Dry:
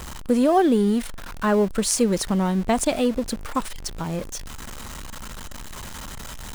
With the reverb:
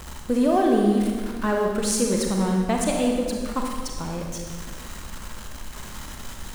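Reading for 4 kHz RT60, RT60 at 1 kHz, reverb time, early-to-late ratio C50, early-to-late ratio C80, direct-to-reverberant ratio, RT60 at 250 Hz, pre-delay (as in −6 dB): 1.4 s, 1.6 s, 1.7 s, 1.5 dB, 4.0 dB, 0.5 dB, 1.9 s, 32 ms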